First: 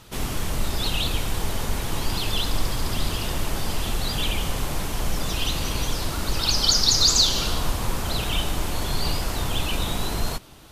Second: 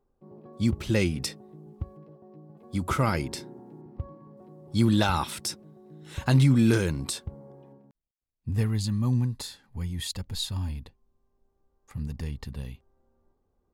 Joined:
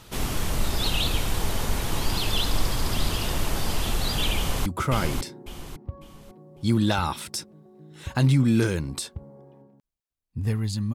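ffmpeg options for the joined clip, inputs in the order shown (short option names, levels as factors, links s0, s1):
-filter_complex "[0:a]apad=whole_dur=10.94,atrim=end=10.94,atrim=end=4.662[s0];[1:a]atrim=start=2.768:end=9.05[s1];[s0][s1]acrossfade=d=0.004:c1=hsin:c2=hsin,asplit=2[s2][s3];[s3]afade=t=in:st=4.36:d=0.01,afade=t=out:st=4.66:d=0.01,aecho=0:1:550|1100|1650|2200:0.707946|0.212384|0.0637151|0.0191145[s4];[s2][s4]amix=inputs=2:normalize=0"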